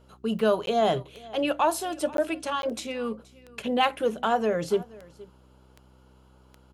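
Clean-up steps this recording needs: de-click; de-hum 64 Hz, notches 6; interpolate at 0.66/2.17/2.62 s, 12 ms; inverse comb 475 ms -21.5 dB

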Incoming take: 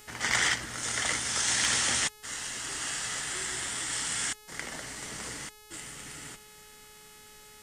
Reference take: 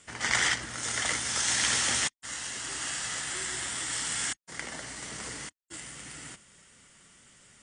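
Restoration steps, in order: clip repair -15 dBFS; de-hum 424.6 Hz, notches 34; expander -44 dBFS, range -21 dB

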